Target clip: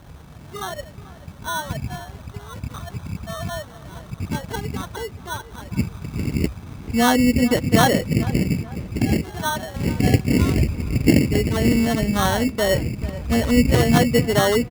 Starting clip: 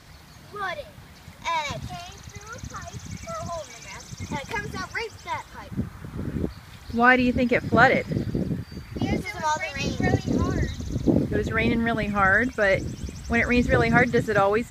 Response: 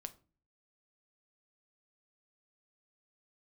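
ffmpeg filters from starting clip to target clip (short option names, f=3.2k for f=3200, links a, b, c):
-filter_complex "[0:a]lowpass=8.5k,lowshelf=f=500:g=7.5,bandreject=f=520:w=16,acrossover=split=1500[a][b];[b]acompressor=threshold=-46dB:ratio=6[c];[a][c]amix=inputs=2:normalize=0,acrusher=samples=18:mix=1:aa=0.000001,asplit=2[d][e];[e]adelay=437,lowpass=f=2.4k:p=1,volume=-16.5dB,asplit=2[f][g];[g]adelay=437,lowpass=f=2.4k:p=1,volume=0.42,asplit=2[h][i];[i]adelay=437,lowpass=f=2.4k:p=1,volume=0.42,asplit=2[j][k];[k]adelay=437,lowpass=f=2.4k:p=1,volume=0.42[l];[f][h][j][l]amix=inputs=4:normalize=0[m];[d][m]amix=inputs=2:normalize=0"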